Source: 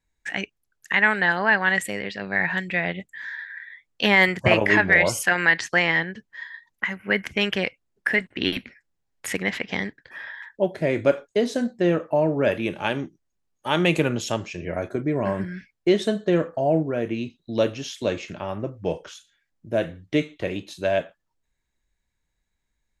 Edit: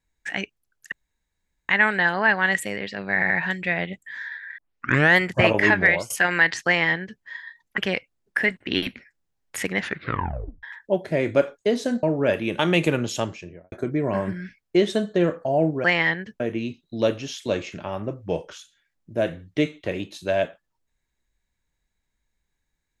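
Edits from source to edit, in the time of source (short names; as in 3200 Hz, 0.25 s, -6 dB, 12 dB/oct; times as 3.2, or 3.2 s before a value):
0.92 insert room tone 0.77 s
2.37 stutter 0.08 s, 3 plays
3.65 tape start 0.59 s
4.92–5.17 fade out, to -21.5 dB
5.73–6.29 copy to 16.96
6.85–7.48 cut
9.48 tape stop 0.85 s
11.73–12.21 cut
12.77–13.71 cut
14.35–14.84 studio fade out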